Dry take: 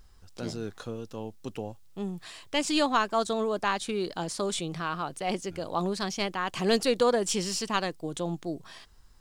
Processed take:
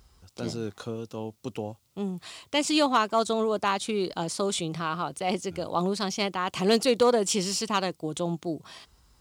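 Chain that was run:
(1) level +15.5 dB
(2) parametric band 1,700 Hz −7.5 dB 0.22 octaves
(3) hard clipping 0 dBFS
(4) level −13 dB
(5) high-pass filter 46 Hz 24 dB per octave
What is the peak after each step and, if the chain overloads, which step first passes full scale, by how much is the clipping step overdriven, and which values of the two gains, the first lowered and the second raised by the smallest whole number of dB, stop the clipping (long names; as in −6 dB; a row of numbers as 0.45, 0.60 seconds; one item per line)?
+4.5, +3.5, 0.0, −13.0, −10.0 dBFS
step 1, 3.5 dB
step 1 +11.5 dB, step 4 −9 dB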